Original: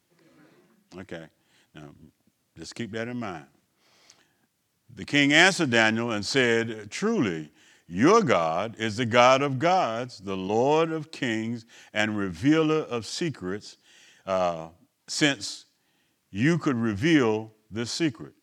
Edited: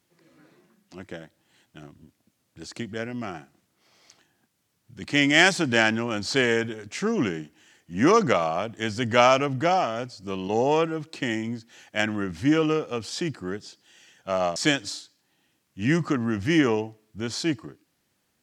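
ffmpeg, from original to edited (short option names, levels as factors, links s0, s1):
-filter_complex "[0:a]asplit=2[s0][s1];[s0]atrim=end=14.562[s2];[s1]atrim=start=15.118[s3];[s2][s3]acrossfade=d=0.004:c1=hsin:c2=hsin"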